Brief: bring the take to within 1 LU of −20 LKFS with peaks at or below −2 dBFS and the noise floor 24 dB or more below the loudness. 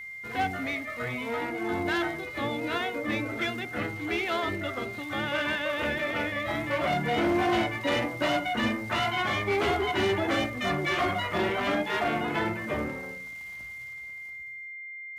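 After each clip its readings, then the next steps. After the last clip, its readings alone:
interfering tone 2,100 Hz; level of the tone −38 dBFS; integrated loudness −29.0 LKFS; sample peak −15.5 dBFS; target loudness −20.0 LKFS
→ notch filter 2,100 Hz, Q 30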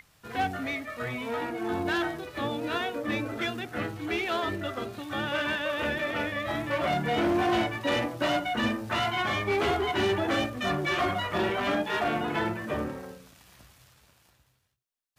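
interfering tone none found; integrated loudness −29.0 LKFS; sample peak −16.0 dBFS; target loudness −20.0 LKFS
→ level +9 dB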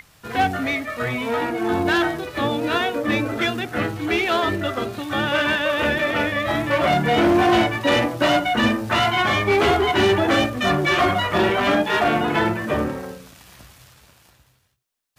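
integrated loudness −20.0 LKFS; sample peak −7.0 dBFS; background noise floor −58 dBFS

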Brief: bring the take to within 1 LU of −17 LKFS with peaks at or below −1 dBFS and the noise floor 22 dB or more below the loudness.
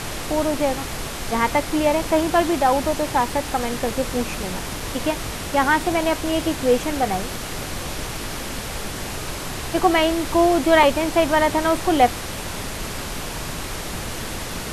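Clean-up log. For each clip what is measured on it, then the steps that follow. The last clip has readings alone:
number of dropouts 2; longest dropout 2.8 ms; background noise floor −30 dBFS; target noise floor −44 dBFS; integrated loudness −22.0 LKFS; sample peak −3.5 dBFS; target loudness −17.0 LKFS
→ repair the gap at 0:04.80/0:10.83, 2.8 ms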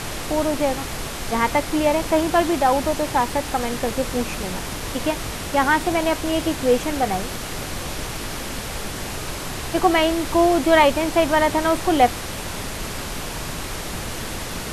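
number of dropouts 0; background noise floor −30 dBFS; target noise floor −44 dBFS
→ noise reduction from a noise print 14 dB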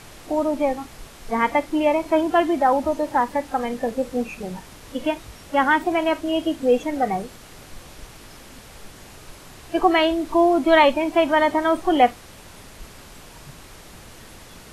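background noise floor −44 dBFS; integrated loudness −21.0 LKFS; sample peak −4.0 dBFS; target loudness −17.0 LKFS
→ level +4 dB
brickwall limiter −1 dBFS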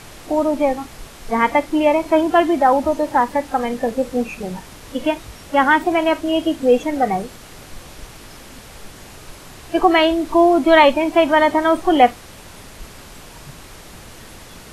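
integrated loudness −17.0 LKFS; sample peak −1.0 dBFS; background noise floor −40 dBFS

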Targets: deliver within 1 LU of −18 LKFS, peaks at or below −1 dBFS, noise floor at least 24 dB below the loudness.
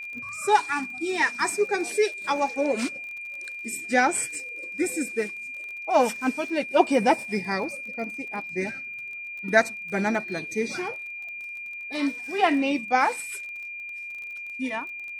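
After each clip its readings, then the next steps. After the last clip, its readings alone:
crackle rate 27 per second; interfering tone 2,400 Hz; level of the tone −34 dBFS; integrated loudness −26.5 LKFS; sample peak −5.0 dBFS; target loudness −18.0 LKFS
→ click removal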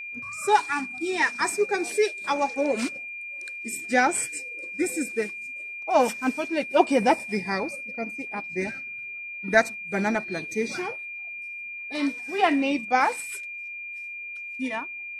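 crackle rate 0 per second; interfering tone 2,400 Hz; level of the tone −34 dBFS
→ notch filter 2,400 Hz, Q 30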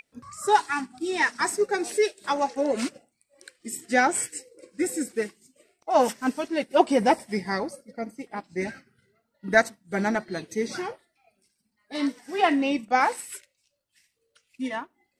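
interfering tone none found; integrated loudness −26.0 LKFS; sample peak −5.0 dBFS; target loudness −18.0 LKFS
→ level +8 dB
brickwall limiter −1 dBFS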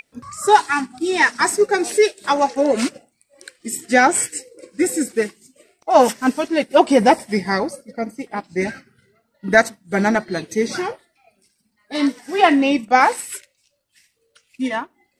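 integrated loudness −18.5 LKFS; sample peak −1.0 dBFS; background noise floor −69 dBFS

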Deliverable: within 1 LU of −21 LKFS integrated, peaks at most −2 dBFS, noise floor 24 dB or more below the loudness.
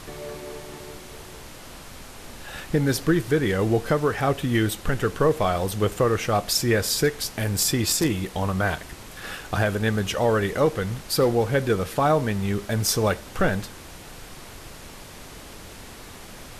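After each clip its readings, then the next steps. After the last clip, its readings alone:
background noise floor −42 dBFS; target noise floor −48 dBFS; integrated loudness −23.5 LKFS; sample peak −9.5 dBFS; target loudness −21.0 LKFS
→ noise reduction from a noise print 6 dB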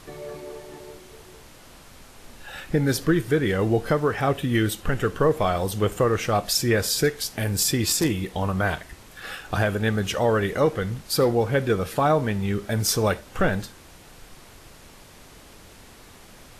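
background noise floor −48 dBFS; integrated loudness −23.5 LKFS; sample peak −10.0 dBFS; target loudness −21.0 LKFS
→ level +2.5 dB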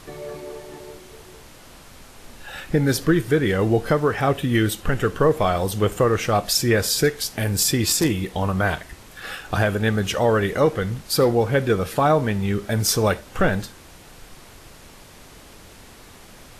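integrated loudness −21.0 LKFS; sample peak −7.5 dBFS; background noise floor −46 dBFS

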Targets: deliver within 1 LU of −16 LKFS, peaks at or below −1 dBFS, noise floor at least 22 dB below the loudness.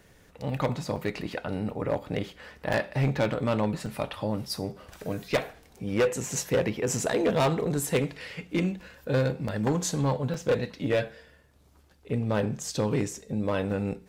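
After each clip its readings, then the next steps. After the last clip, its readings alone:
share of clipped samples 1.4%; peaks flattened at −19.0 dBFS; number of dropouts 5; longest dropout 4.2 ms; integrated loudness −29.0 LKFS; sample peak −19.0 dBFS; target loudness −16.0 LKFS
→ clipped peaks rebuilt −19 dBFS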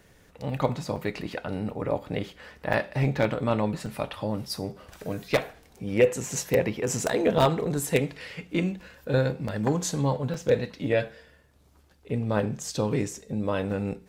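share of clipped samples 0.0%; number of dropouts 5; longest dropout 4.2 ms
→ repair the gap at 0:00.96/0:02.73/0:03.86/0:09.48/0:10.34, 4.2 ms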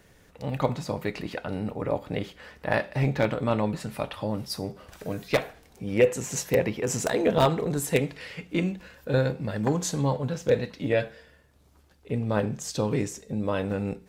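number of dropouts 0; integrated loudness −28.0 LKFS; sample peak −10.0 dBFS; target loudness −16.0 LKFS
→ level +12 dB
brickwall limiter −1 dBFS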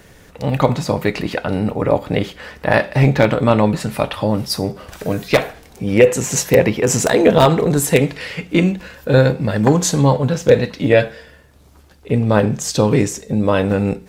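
integrated loudness −16.5 LKFS; sample peak −1.0 dBFS; background noise floor −46 dBFS

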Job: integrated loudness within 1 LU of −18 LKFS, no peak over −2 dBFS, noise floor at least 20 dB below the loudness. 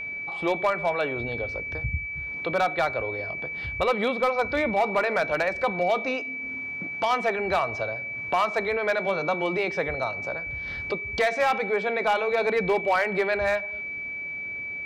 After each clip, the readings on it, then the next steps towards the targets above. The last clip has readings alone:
share of clipped samples 0.5%; peaks flattened at −16.0 dBFS; interfering tone 2,300 Hz; level of the tone −31 dBFS; integrated loudness −26.0 LKFS; sample peak −16.0 dBFS; target loudness −18.0 LKFS
→ clipped peaks rebuilt −16 dBFS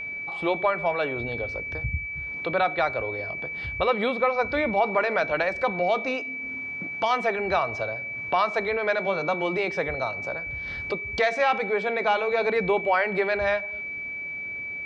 share of clipped samples 0.0%; interfering tone 2,300 Hz; level of the tone −31 dBFS
→ notch filter 2,300 Hz, Q 30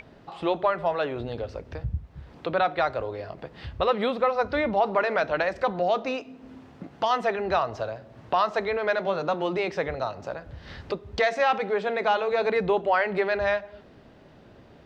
interfering tone none found; integrated loudness −26.5 LKFS; sample peak −11.5 dBFS; target loudness −18.0 LKFS
→ level +8.5 dB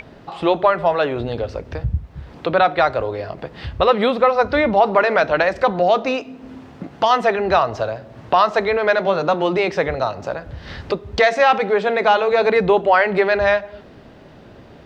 integrated loudness −18.0 LKFS; sample peak −3.0 dBFS; background noise floor −43 dBFS

